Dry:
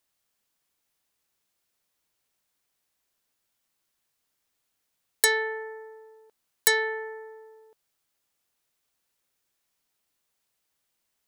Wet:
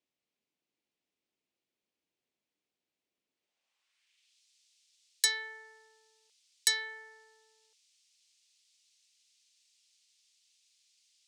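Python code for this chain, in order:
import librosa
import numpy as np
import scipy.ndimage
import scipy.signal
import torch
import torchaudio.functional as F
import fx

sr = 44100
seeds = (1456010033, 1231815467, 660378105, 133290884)

y = fx.dmg_noise_band(x, sr, seeds[0], low_hz=2200.0, high_hz=9400.0, level_db=-69.0)
y = fx.filter_sweep_bandpass(y, sr, from_hz=300.0, to_hz=4900.0, start_s=3.31, end_s=4.42, q=1.2)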